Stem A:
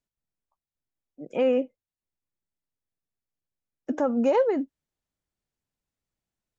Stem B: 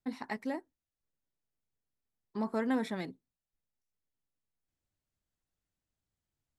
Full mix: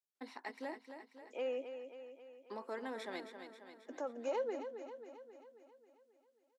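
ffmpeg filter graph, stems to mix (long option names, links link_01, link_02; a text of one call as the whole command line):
ffmpeg -i stem1.wav -i stem2.wav -filter_complex "[0:a]volume=-15.5dB,asplit=2[link_01][link_02];[link_02]volume=-9dB[link_03];[1:a]aemphasis=mode=reproduction:type=50fm,alimiter=level_in=4.5dB:limit=-24dB:level=0:latency=1:release=283,volume=-4.5dB,adelay=150,volume=-3.5dB,asplit=2[link_04][link_05];[link_05]volume=-8.5dB[link_06];[link_03][link_06]amix=inputs=2:normalize=0,aecho=0:1:269|538|807|1076|1345|1614|1883|2152|2421:1|0.58|0.336|0.195|0.113|0.0656|0.0381|0.0221|0.0128[link_07];[link_01][link_04][link_07]amix=inputs=3:normalize=0,highpass=frequency=320:width=0.5412,highpass=frequency=320:width=1.3066,highshelf=frequency=3700:gain=10.5" out.wav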